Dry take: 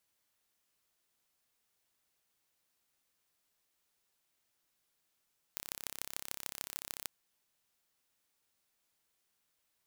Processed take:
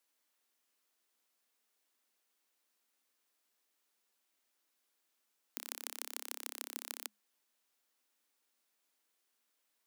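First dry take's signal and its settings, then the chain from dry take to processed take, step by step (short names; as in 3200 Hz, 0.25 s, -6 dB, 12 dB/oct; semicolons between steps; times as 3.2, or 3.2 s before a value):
pulse train 33.6/s, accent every 5, -9.5 dBFS 1.50 s
Chebyshev high-pass 210 Hz, order 10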